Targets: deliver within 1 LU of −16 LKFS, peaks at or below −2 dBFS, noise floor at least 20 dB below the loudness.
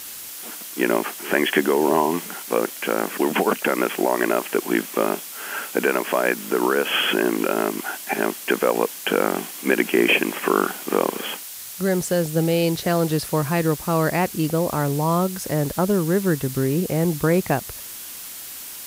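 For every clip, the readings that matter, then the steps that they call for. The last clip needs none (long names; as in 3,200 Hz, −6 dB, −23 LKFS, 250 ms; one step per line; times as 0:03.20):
background noise floor −36 dBFS; target noise floor −42 dBFS; integrated loudness −22.0 LKFS; sample peak −4.0 dBFS; target loudness −16.0 LKFS
→ broadband denoise 6 dB, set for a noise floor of −36 dBFS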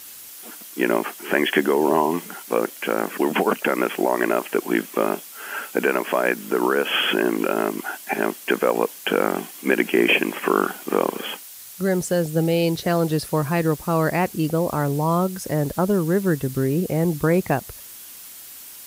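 background noise floor −41 dBFS; target noise floor −42 dBFS
→ broadband denoise 6 dB, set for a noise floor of −41 dBFS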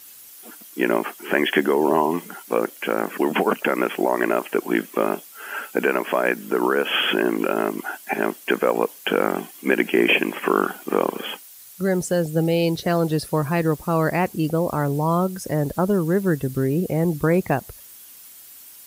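background noise floor −44 dBFS; integrated loudness −22.0 LKFS; sample peak −4.5 dBFS; target loudness −16.0 LKFS
→ level +6 dB
brickwall limiter −2 dBFS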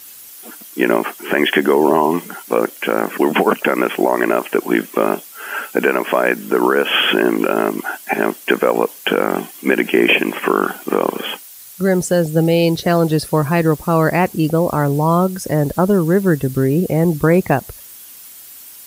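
integrated loudness −16.5 LKFS; sample peak −2.0 dBFS; background noise floor −38 dBFS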